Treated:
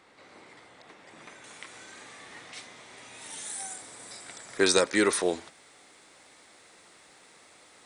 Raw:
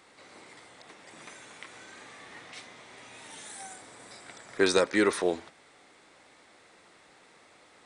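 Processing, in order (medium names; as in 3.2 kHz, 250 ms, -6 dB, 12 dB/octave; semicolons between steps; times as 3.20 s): treble shelf 5.4 kHz -8 dB, from 1.44 s +6.5 dB, from 3.21 s +11.5 dB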